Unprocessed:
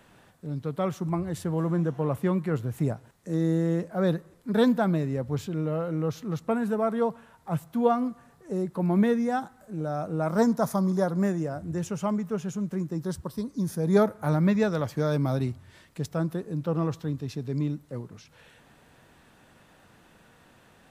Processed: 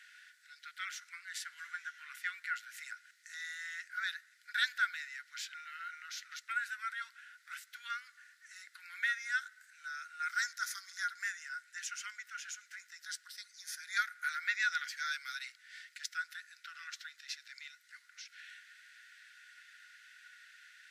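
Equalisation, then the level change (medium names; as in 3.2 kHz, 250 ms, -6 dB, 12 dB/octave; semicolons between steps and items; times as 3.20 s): rippled Chebyshev high-pass 1.4 kHz, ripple 6 dB; low-pass 3.2 kHz 6 dB/octave; +10.0 dB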